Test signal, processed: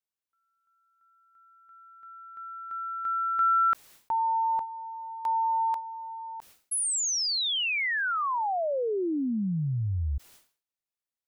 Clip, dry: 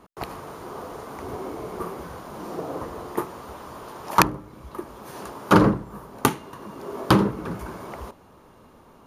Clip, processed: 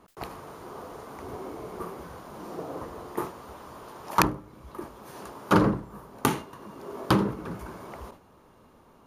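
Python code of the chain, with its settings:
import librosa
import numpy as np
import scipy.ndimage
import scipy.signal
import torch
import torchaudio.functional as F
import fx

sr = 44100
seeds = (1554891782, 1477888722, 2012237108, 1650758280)

y = fx.sustainer(x, sr, db_per_s=140.0)
y = y * librosa.db_to_amplitude(-5.0)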